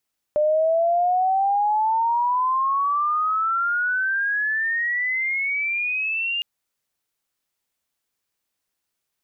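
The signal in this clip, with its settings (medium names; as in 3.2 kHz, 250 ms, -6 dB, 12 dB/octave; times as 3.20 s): gliding synth tone sine, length 6.06 s, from 596 Hz, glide +27 st, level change -6 dB, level -16 dB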